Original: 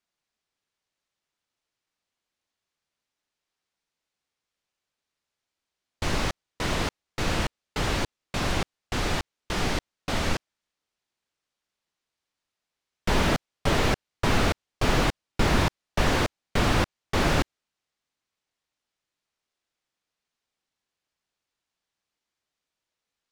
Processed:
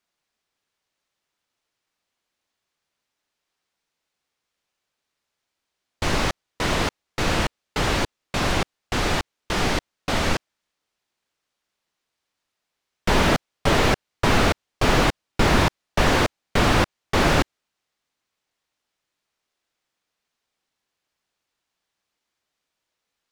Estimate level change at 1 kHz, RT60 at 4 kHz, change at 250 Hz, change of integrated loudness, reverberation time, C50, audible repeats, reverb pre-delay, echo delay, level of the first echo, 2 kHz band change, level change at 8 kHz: +5.5 dB, no reverb audible, +4.5 dB, +4.5 dB, no reverb audible, no reverb audible, no echo audible, no reverb audible, no echo audible, no echo audible, +5.5 dB, +4.0 dB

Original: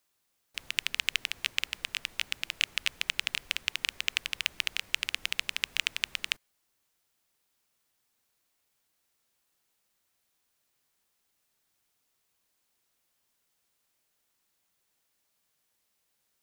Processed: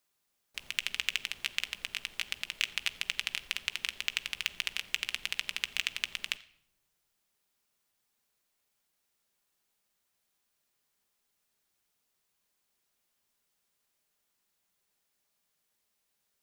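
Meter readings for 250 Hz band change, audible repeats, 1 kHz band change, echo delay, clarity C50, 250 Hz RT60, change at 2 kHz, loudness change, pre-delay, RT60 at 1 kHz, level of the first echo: −2.0 dB, no echo audible, −2.5 dB, no echo audible, 18.0 dB, 1.3 s, −2.5 dB, −2.5 dB, 5 ms, 0.70 s, no echo audible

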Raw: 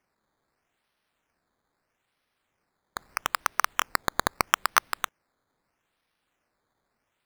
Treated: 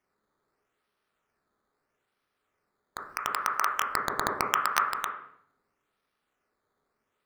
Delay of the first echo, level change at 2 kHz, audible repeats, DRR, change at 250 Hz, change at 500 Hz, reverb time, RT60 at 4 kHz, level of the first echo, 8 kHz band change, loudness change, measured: no echo audible, −2.5 dB, no echo audible, −0.5 dB, −1.0 dB, −0.5 dB, 0.65 s, 0.60 s, no echo audible, −5.0 dB, −1.0 dB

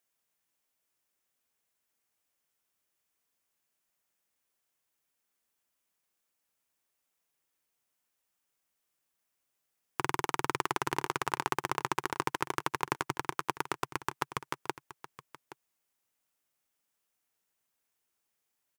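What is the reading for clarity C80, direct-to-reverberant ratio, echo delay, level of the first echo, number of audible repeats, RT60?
no reverb audible, no reverb audible, 822 ms, −15.5 dB, 1, no reverb audible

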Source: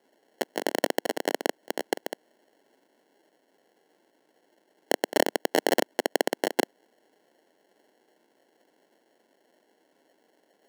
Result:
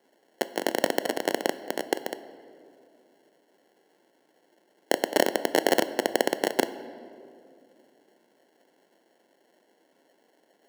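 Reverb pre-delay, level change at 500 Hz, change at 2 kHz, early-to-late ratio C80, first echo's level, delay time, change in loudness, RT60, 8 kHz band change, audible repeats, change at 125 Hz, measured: 6 ms, +1.5 dB, +1.0 dB, 15.0 dB, no echo audible, no echo audible, +1.5 dB, 2.5 s, +1.0 dB, no echo audible, +2.0 dB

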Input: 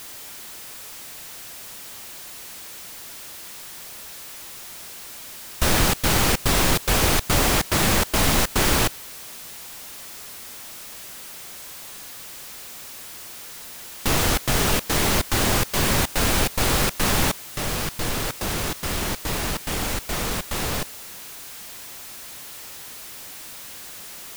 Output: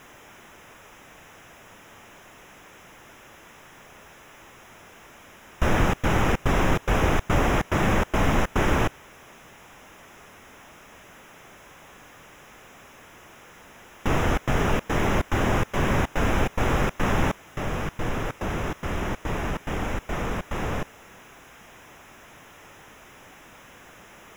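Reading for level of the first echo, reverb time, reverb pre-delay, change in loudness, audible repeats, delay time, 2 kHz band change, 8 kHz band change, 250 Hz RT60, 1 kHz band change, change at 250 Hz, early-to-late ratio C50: no echo audible, no reverb audible, no reverb audible, −4.0 dB, no echo audible, no echo audible, −3.0 dB, −16.0 dB, no reverb audible, −1.0 dB, 0.0 dB, no reverb audible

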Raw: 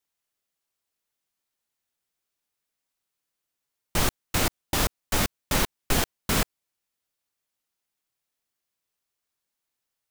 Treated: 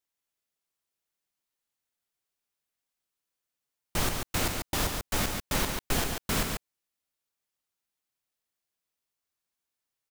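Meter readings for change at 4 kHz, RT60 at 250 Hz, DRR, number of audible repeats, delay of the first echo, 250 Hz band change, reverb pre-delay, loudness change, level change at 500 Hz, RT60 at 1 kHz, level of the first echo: −3.5 dB, no reverb audible, no reverb audible, 1, 140 ms, −3.5 dB, no reverb audible, −3.5 dB, −3.5 dB, no reverb audible, −5.5 dB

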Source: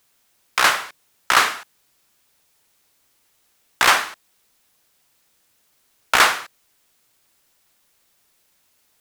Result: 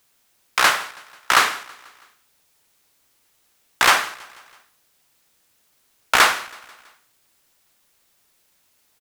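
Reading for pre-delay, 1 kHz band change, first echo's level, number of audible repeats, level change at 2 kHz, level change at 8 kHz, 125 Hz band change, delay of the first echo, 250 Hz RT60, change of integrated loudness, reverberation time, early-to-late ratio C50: no reverb audible, 0.0 dB, −22.5 dB, 3, 0.0 dB, 0.0 dB, 0.0 dB, 163 ms, no reverb audible, 0.0 dB, no reverb audible, no reverb audible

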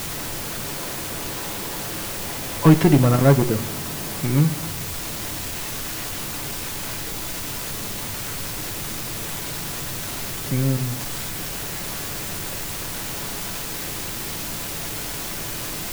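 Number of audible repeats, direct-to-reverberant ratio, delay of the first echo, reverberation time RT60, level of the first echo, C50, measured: no echo audible, 7.0 dB, no echo audible, 0.75 s, no echo audible, 14.5 dB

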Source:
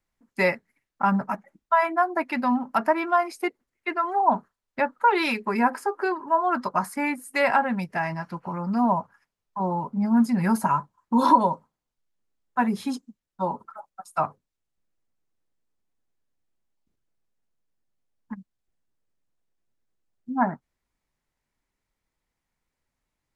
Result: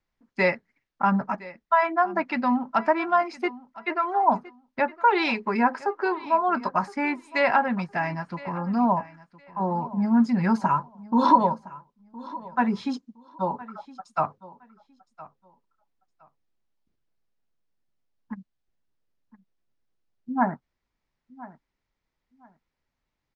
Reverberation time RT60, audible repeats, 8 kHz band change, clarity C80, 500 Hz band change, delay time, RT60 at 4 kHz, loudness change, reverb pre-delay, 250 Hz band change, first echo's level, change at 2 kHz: no reverb audible, 2, below −10 dB, no reverb audible, 0.0 dB, 1,014 ms, no reverb audible, 0.0 dB, no reverb audible, 0.0 dB, −19.0 dB, 0.0 dB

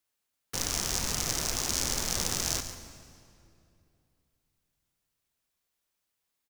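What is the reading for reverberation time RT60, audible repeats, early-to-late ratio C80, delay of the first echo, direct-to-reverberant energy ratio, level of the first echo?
2.6 s, 1, 9.0 dB, 141 ms, 8.5 dB, −12.5 dB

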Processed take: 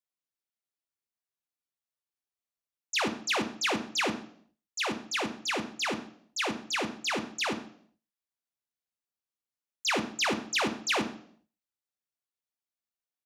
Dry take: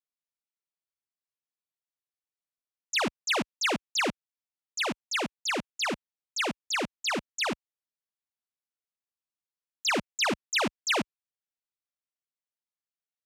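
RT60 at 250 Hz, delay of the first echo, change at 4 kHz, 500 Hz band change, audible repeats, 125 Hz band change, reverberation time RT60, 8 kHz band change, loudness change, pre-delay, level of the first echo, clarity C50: 0.65 s, 131 ms, −1.5 dB, −1.0 dB, 1, −1.0 dB, 0.60 s, −1.0 dB, −1.0 dB, 3 ms, −23.5 dB, 12.5 dB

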